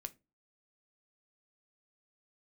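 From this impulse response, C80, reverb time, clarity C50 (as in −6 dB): 30.0 dB, 0.25 s, 22.0 dB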